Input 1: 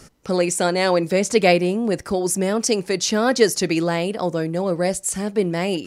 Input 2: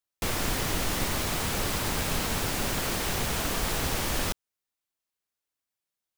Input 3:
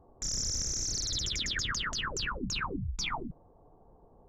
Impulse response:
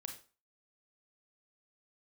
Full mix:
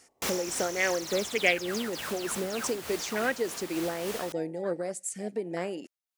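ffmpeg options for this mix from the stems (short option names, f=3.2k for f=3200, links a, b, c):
-filter_complex "[0:a]afwtdn=0.0708,equalizer=f=125:t=o:w=1:g=-6,equalizer=f=1k:t=o:w=1:g=-10,equalizer=f=2k:t=o:w=1:g=9,equalizer=f=8k:t=o:w=1:g=8,acompressor=threshold=-27dB:ratio=2,volume=1dB,asplit=3[a][b][c];[b]volume=-21dB[d];[1:a]volume=1dB[e];[2:a]volume=-4dB[f];[c]apad=whole_len=272308[g];[e][g]sidechaincompress=threshold=-31dB:ratio=8:attack=34:release=1000[h];[3:a]atrim=start_sample=2205[i];[d][i]afir=irnorm=-1:irlink=0[j];[a][h][f][j]amix=inputs=4:normalize=0,highpass=f=460:p=1,tremolo=f=3.4:d=0.43"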